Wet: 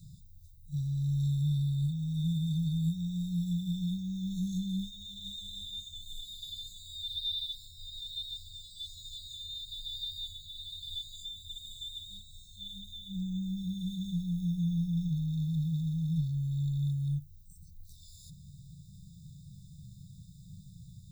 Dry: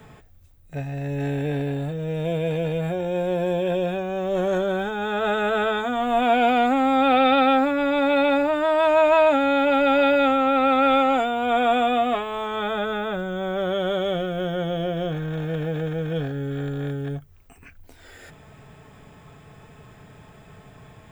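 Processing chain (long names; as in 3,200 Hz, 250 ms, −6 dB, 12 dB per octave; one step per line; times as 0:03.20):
echo ahead of the sound 41 ms −12 dB
brick-wall band-stop 200–3,500 Hz
level −1 dB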